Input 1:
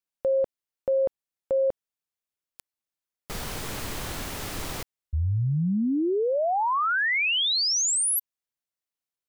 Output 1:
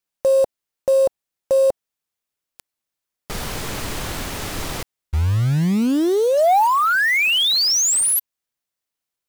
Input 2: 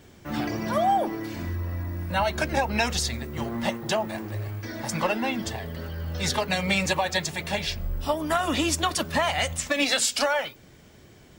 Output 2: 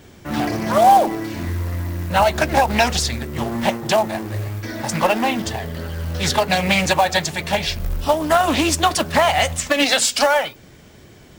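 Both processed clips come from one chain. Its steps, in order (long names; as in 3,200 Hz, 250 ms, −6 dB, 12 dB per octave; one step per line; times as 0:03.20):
dynamic equaliser 740 Hz, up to +5 dB, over −38 dBFS, Q 2.5
floating-point word with a short mantissa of 2 bits
highs frequency-modulated by the lows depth 0.23 ms
level +6.5 dB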